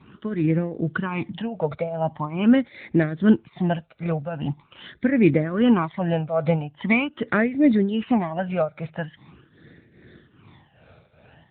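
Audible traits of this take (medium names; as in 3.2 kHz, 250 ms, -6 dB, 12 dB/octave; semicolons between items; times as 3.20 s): tremolo triangle 2.5 Hz, depth 80%; phasing stages 12, 0.43 Hz, lowest notch 310–1000 Hz; AMR-NB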